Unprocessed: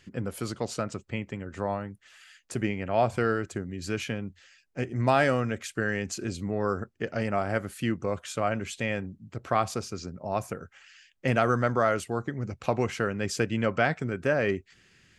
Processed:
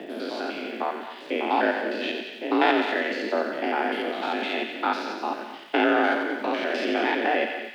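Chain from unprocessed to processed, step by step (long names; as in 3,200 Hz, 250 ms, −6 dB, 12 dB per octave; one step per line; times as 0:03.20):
spectrum averaged block by block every 200 ms
high shelf with overshoot 5,200 Hz −12.5 dB, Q 3
mains-hum notches 50/100/150/200 Hz
in parallel at −10.5 dB: soft clipping −19.5 dBFS, distortion −16 dB
on the sum: surface crackle 560 per second −55 dBFS
time stretch by overlap-add 0.51×, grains 34 ms
frequency shifter +160 Hz
on a send: delay with a high-pass on its return 90 ms, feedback 60%, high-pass 1,400 Hz, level −5 dB
on the sum: reverb whose tail is shaped and stops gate 260 ms rising, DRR 10 dB
level +4.5 dB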